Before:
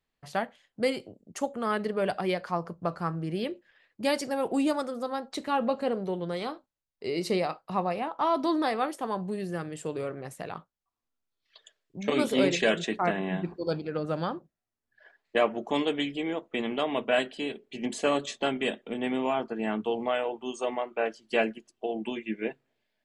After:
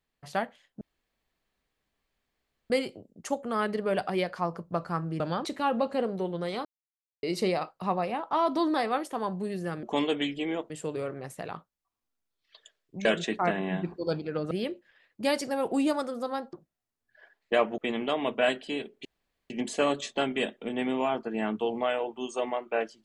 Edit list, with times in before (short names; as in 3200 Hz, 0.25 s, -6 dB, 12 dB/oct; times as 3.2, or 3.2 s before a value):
0.81 insert room tone 1.89 s
3.31–5.33 swap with 14.11–14.36
6.53–7.11 mute
12.06–12.65 cut
15.61–16.48 move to 9.71
17.75 insert room tone 0.45 s